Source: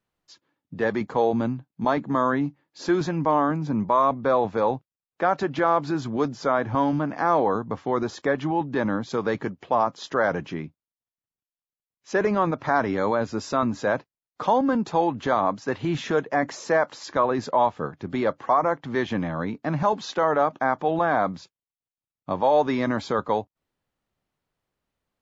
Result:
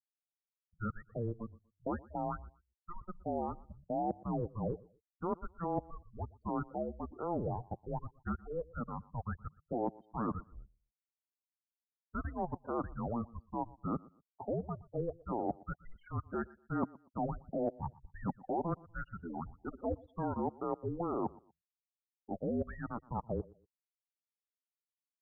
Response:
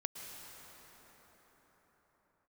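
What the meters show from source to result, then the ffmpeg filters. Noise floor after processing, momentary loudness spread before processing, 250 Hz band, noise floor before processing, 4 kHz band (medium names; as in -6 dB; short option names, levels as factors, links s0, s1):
under -85 dBFS, 7 LU, -13.0 dB, under -85 dBFS, under -40 dB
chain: -af "afftfilt=real='re*gte(hypot(re,im),0.0708)':imag='im*gte(hypot(re,im),0.0708)':win_size=1024:overlap=0.75,areverse,acompressor=threshold=0.02:ratio=6,areverse,highpass=f=450:t=q:w=0.5412,highpass=f=450:t=q:w=1.307,lowpass=f=2200:t=q:w=0.5176,lowpass=f=2200:t=q:w=0.7071,lowpass=f=2200:t=q:w=1.932,afreqshift=-350,aecho=1:1:120|240:0.0794|0.0207,volume=1.19"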